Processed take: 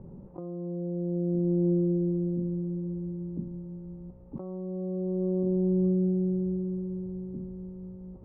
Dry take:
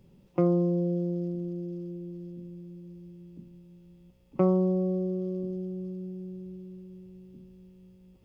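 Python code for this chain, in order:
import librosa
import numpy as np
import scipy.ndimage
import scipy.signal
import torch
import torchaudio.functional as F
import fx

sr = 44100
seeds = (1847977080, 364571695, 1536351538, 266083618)

y = scipy.signal.sosfilt(scipy.signal.butter(4, 1100.0, 'lowpass', fs=sr, output='sos'), x)
y = fx.over_compress(y, sr, threshold_db=-36.0, ratio=-1.0)
y = y * 10.0 ** (7.0 / 20.0)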